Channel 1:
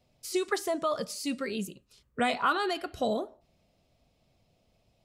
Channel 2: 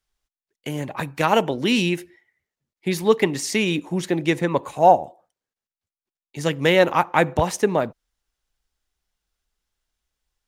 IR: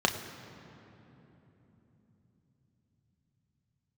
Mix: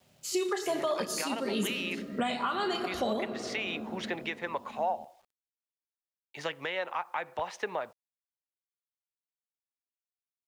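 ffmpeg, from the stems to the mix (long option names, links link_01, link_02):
-filter_complex "[0:a]highshelf=frequency=5600:gain=11.5,volume=-2dB,asplit=2[link_01][link_02];[link_02]volume=-6dB[link_03];[1:a]acrossover=split=560 4400:gain=0.1 1 0.0708[link_04][link_05][link_06];[link_04][link_05][link_06]amix=inputs=3:normalize=0,acompressor=threshold=-28dB:ratio=2.5,volume=-0.5dB,asplit=2[link_07][link_08];[link_08]apad=whole_len=222450[link_09];[link_01][link_09]sidechaingate=range=-33dB:threshold=-56dB:ratio=16:detection=peak[link_10];[2:a]atrim=start_sample=2205[link_11];[link_03][link_11]afir=irnorm=-1:irlink=0[link_12];[link_10][link_07][link_12]amix=inputs=3:normalize=0,acrusher=bits=10:mix=0:aa=0.000001,alimiter=limit=-21dB:level=0:latency=1:release=497"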